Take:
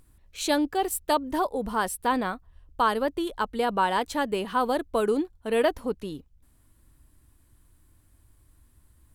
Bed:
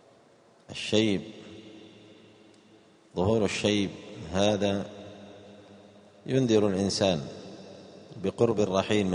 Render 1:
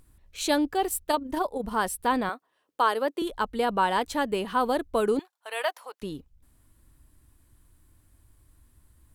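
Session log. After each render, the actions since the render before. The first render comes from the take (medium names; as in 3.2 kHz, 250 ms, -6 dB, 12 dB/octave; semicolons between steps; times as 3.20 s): 1.03–1.73 s: AM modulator 26 Hz, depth 30%; 2.29–3.22 s: high-pass 290 Hz 24 dB/octave; 5.19–6.02 s: high-pass 710 Hz 24 dB/octave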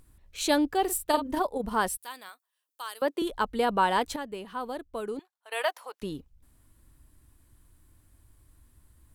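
0.83–1.40 s: doubling 47 ms -9 dB; 1.97–3.02 s: differentiator; 4.16–5.52 s: gain -10 dB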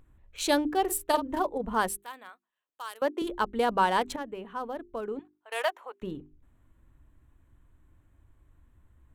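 local Wiener filter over 9 samples; hum notches 50/100/150/200/250/300/350/400 Hz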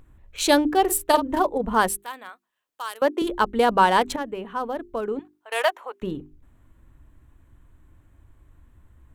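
trim +7 dB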